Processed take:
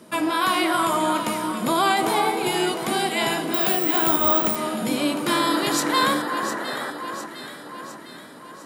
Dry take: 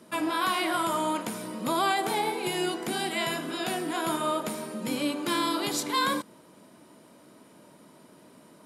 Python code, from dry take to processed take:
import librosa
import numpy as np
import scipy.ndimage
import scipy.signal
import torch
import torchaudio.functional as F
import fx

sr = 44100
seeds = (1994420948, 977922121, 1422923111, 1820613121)

p1 = fx.spec_paint(x, sr, seeds[0], shape='noise', start_s=5.26, length_s=1.65, low_hz=210.0, high_hz=2000.0, level_db=-37.0)
p2 = p1 + fx.echo_alternate(p1, sr, ms=353, hz=1600.0, feedback_pct=73, wet_db=-7, dry=0)
p3 = fx.resample_bad(p2, sr, factor=2, down='none', up='zero_stuff', at=(3.54, 4.56))
y = F.gain(torch.from_numpy(p3), 5.5).numpy()